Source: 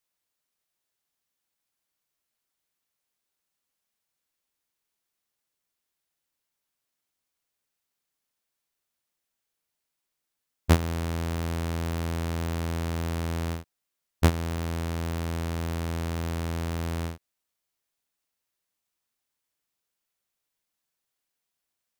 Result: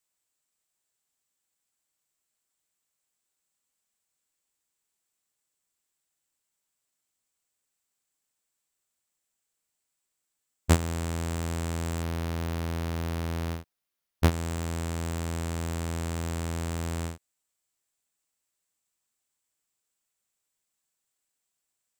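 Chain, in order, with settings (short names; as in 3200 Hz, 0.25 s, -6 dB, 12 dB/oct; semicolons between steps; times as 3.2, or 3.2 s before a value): bell 7700 Hz +11.5 dB 0.34 oct, from 12.02 s -3.5 dB, from 14.31 s +11.5 dB; gain -1.5 dB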